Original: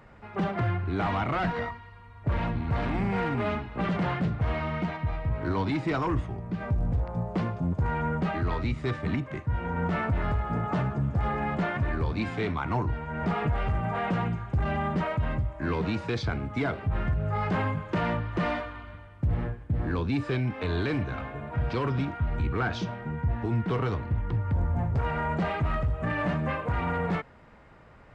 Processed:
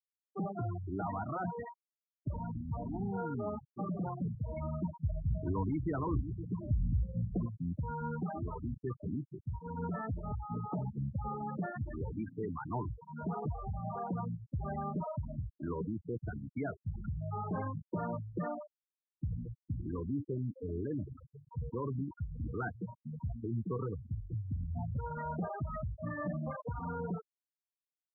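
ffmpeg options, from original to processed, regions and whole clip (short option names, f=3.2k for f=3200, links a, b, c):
-filter_complex "[0:a]asettb=1/sr,asplit=3[a][b][c];[a]atrim=end=4.574[d];[b]atrim=start=4.57:end=7.46,asetpts=PTS-STARTPTS,afade=t=in:d=0.004:c=qsin,afade=t=out:st=2.886:d=0.004:c=qsin,lowshelf=f=97:g=12,aecho=1:1:522:0.282,atrim=end_sample=127449[e];[c]atrim=start=7.456[f];[d][e]acrossfade=d=0.004:c1=hsin:c2=qsin[g];[g][f]acrossfade=d=0.004:c1=qsin:c2=hsin,highpass=f=110:p=1,highshelf=f=3k:g=-10.5,afftfilt=real='re*gte(hypot(re,im),0.0891)':imag='im*gte(hypot(re,im),0.0891)':win_size=1024:overlap=0.75,volume=-6.5dB"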